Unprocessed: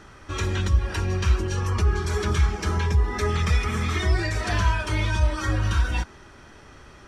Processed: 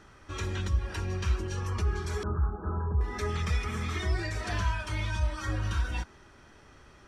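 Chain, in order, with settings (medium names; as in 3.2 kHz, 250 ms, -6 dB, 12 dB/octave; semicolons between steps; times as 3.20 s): 2.23–3.01 s: steep low-pass 1.5 kHz 96 dB/octave; 4.64–5.47 s: peaking EQ 400 Hz -7.5 dB 0.68 oct; trim -7.5 dB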